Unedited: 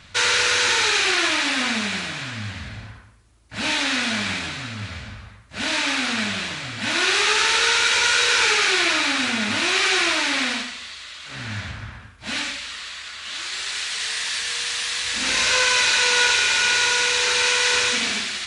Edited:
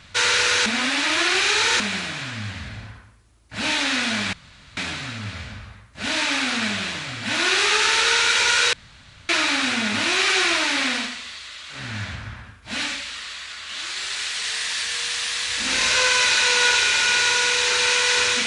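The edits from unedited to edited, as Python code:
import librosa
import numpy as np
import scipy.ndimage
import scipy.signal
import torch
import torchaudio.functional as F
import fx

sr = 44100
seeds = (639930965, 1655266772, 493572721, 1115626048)

y = fx.edit(x, sr, fx.reverse_span(start_s=0.66, length_s=1.14),
    fx.insert_room_tone(at_s=4.33, length_s=0.44),
    fx.room_tone_fill(start_s=8.29, length_s=0.56), tone=tone)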